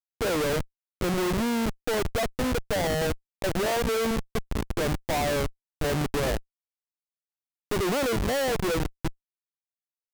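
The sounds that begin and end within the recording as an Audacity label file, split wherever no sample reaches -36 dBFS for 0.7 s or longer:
7.710000	9.100000	sound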